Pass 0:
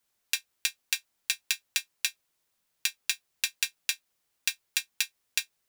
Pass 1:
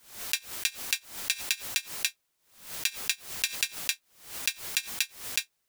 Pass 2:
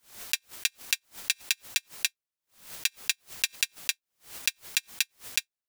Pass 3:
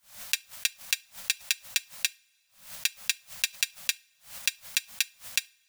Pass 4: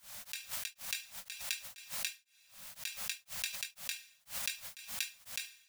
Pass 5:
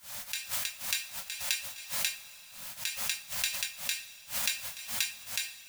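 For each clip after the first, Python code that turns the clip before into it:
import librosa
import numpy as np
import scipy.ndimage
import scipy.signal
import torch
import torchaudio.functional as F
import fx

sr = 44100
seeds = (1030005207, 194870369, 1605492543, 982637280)

y1 = fx.pre_swell(x, sr, db_per_s=110.0)
y2 = fx.transient(y1, sr, attack_db=10, sustain_db=-10)
y2 = y2 * 10.0 ** (-8.0 / 20.0)
y3 = scipy.signal.sosfilt(scipy.signal.ellip(3, 1.0, 40, [230.0, 530.0], 'bandstop', fs=sr, output='sos'), y2)
y3 = fx.rev_double_slope(y3, sr, seeds[0], early_s=0.33, late_s=2.7, knee_db=-22, drr_db=19.0)
y4 = fx.over_compress(y3, sr, threshold_db=-32.0, ratio=-1.0)
y4 = y4 * np.abs(np.cos(np.pi * 2.0 * np.arange(len(y4)) / sr))
y5 = fx.rev_double_slope(y4, sr, seeds[1], early_s=0.25, late_s=3.1, knee_db=-18, drr_db=4.0)
y5 = y5 * 10.0 ** (6.0 / 20.0)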